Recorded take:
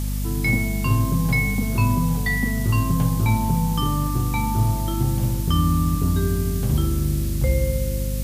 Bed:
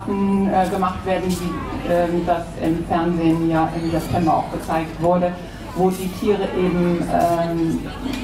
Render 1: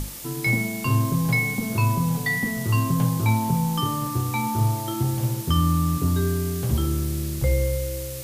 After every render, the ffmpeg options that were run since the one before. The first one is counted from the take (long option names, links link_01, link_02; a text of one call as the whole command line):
ffmpeg -i in.wav -af "bandreject=frequency=50:width_type=h:width=6,bandreject=frequency=100:width_type=h:width=6,bandreject=frequency=150:width_type=h:width=6,bandreject=frequency=200:width_type=h:width=6,bandreject=frequency=250:width_type=h:width=6,bandreject=frequency=300:width_type=h:width=6" out.wav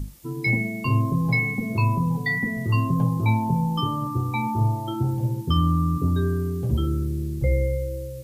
ffmpeg -i in.wav -af "afftdn=noise_reduction=16:noise_floor=-32" out.wav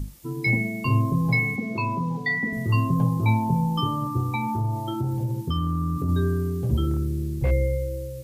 ffmpeg -i in.wav -filter_complex "[0:a]asettb=1/sr,asplit=3[link_01][link_02][link_03];[link_01]atrim=end=1.564[link_04];[link_02]atrim=start=1.56:end=2.53,asetpts=PTS-STARTPTS,afade=type=in:duration=0.004:curve=qsin,afade=type=out:start_time=0.966:duration=0.004:curve=qsin,acrossover=split=160 6700:gain=0.178 1 0.224[link_05][link_06][link_07];[link_05][link_06][link_07]amix=inputs=3:normalize=0[link_08];[link_03]atrim=start=2.526[link_09];[link_04][link_08]acrossfade=duration=0.004:curve1=hsin:curve2=qsin[link_10];[link_10][link_09]acrossfade=duration=0.004:curve1=qsin:curve2=hsin,asettb=1/sr,asplit=3[link_11][link_12][link_13];[link_11]atrim=end=4.354[link_14];[link_12]atrim=start=4.35:end=6.09,asetpts=PTS-STARTPTS,afade=type=in:duration=0.004:curve=qsin,afade=type=out:start_time=1.736:duration=0.004:curve=qsin,acompressor=threshold=-22dB:ratio=3:attack=3.2:release=140:knee=1:detection=peak[link_15];[link_13]atrim=start=6.086[link_16];[link_14][link_15]acrossfade=duration=0.004:curve1=hsin:curve2=qsin[link_17];[link_17][link_16]acrossfade=duration=0.004:curve1=qsin:curve2=hsin,asettb=1/sr,asplit=3[link_18][link_19][link_20];[link_18]atrim=end=6.914[link_21];[link_19]atrim=start=6.91:end=7.51,asetpts=PTS-STARTPTS,afade=type=in:duration=0.004:curve=qsin,afade=type=out:start_time=0.596:duration=0.004:curve=qsin,asoftclip=type=hard:threshold=-16.5dB[link_22];[link_20]atrim=start=7.506[link_23];[link_21][link_22]acrossfade=duration=0.004:curve1=hsin:curve2=qsin[link_24];[link_24][link_23]acrossfade=duration=0.004:curve1=qsin:curve2=hsin" out.wav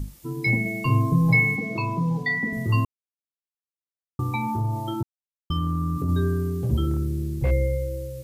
ffmpeg -i in.wav -filter_complex "[0:a]asettb=1/sr,asplit=3[link_01][link_02][link_03];[link_01]atrim=end=0.654[link_04];[link_02]atrim=start=0.65:end=2.23,asetpts=PTS-STARTPTS,afade=type=in:duration=0.004:curve=qsin,afade=type=out:start_time=1.576:duration=0.004:curve=qsin,aecho=1:1:6.4:0.65,atrim=end_sample=69678[link_05];[link_03]atrim=start=2.226[link_06];[link_04][link_05]acrossfade=duration=0.004:curve1=hsin:curve2=qsin[link_07];[link_07][link_06]acrossfade=duration=0.004:curve1=qsin:curve2=hsin,asplit=5[link_08][link_09][link_10][link_11][link_12];[link_08]atrim=end=2.85,asetpts=PTS-STARTPTS,afade=type=out:start_time=2.846:duration=0.004:curve=hsin[link_13];[link_09]atrim=start=2.85:end=4.19,asetpts=PTS-STARTPTS,volume=0[link_14];[link_10]atrim=start=4.19:end=5.03,asetpts=PTS-STARTPTS,afade=type=in:duration=0.004:curve=hsin,afade=type=out:start_time=0.836:duration=0.004:curve=hsin[link_15];[link_11]atrim=start=5.03:end=5.5,asetpts=PTS-STARTPTS,volume=0[link_16];[link_12]atrim=start=5.5,asetpts=PTS-STARTPTS,afade=type=in:duration=0.004:curve=hsin[link_17];[link_13][link_14][link_15][link_16][link_17]concat=n=5:v=0:a=1" out.wav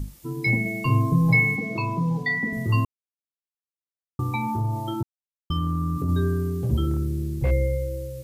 ffmpeg -i in.wav -af anull out.wav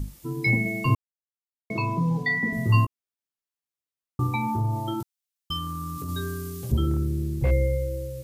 ffmpeg -i in.wav -filter_complex "[0:a]asettb=1/sr,asplit=3[link_01][link_02][link_03];[link_01]atrim=end=2.414[link_04];[link_02]atrim=start=2.41:end=4.27,asetpts=PTS-STARTPTS,afade=type=in:duration=0.004:curve=qsin,afade=type=out:start_time=1.856:duration=0.004:curve=qsin,asplit=2[link_05][link_06];[link_06]adelay=17,volume=-6.5dB[link_07];[link_05][link_07]amix=inputs=2:normalize=0,atrim=end_sample=82026[link_08];[link_03]atrim=start=4.266[link_09];[link_04][link_08]acrossfade=duration=0.004:curve1=hsin:curve2=qsin[link_10];[link_10][link_09]acrossfade=duration=0.004:curve1=qsin:curve2=hsin,asettb=1/sr,asplit=3[link_11][link_12][link_13];[link_11]atrim=end=5.004[link_14];[link_12]atrim=start=5:end=6.72,asetpts=PTS-STARTPTS,afade=type=in:duration=0.004:curve=qsin,afade=type=out:start_time=1.716:duration=0.004:curve=qsin,tiltshelf=frequency=1400:gain=-9[link_15];[link_13]atrim=start=6.716[link_16];[link_14][link_15]acrossfade=duration=0.004:curve1=hsin:curve2=qsin[link_17];[link_17][link_16]acrossfade=duration=0.004:curve1=qsin:curve2=hsin,asplit=3[link_18][link_19][link_20];[link_18]atrim=end=0.95,asetpts=PTS-STARTPTS,afade=type=out:start_time=0.946:duration=0.004:curve=hsin[link_21];[link_19]atrim=start=0.95:end=1.7,asetpts=PTS-STARTPTS,volume=0[link_22];[link_20]atrim=start=1.7,asetpts=PTS-STARTPTS,afade=type=in:duration=0.004:curve=hsin[link_23];[link_21][link_22][link_23]concat=n=3:v=0:a=1" out.wav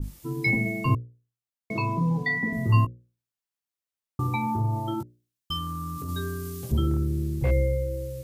ffmpeg -i in.wav -af "bandreject=frequency=60:width_type=h:width=6,bandreject=frequency=120:width_type=h:width=6,bandreject=frequency=180:width_type=h:width=6,bandreject=frequency=240:width_type=h:width=6,bandreject=frequency=300:width_type=h:width=6,bandreject=frequency=360:width_type=h:width=6,bandreject=frequency=420:width_type=h:width=6,bandreject=frequency=480:width_type=h:width=6,bandreject=frequency=540:width_type=h:width=6,bandreject=frequency=600:width_type=h:width=6,adynamicequalizer=threshold=0.00891:dfrequency=1800:dqfactor=0.7:tfrequency=1800:tqfactor=0.7:attack=5:release=100:ratio=0.375:range=3.5:mode=cutabove:tftype=highshelf" out.wav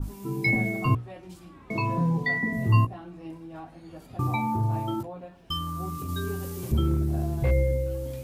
ffmpeg -i in.wav -i bed.wav -filter_complex "[1:a]volume=-23.5dB[link_01];[0:a][link_01]amix=inputs=2:normalize=0" out.wav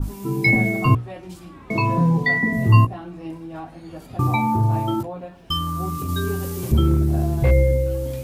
ffmpeg -i in.wav -af "volume=7dB" out.wav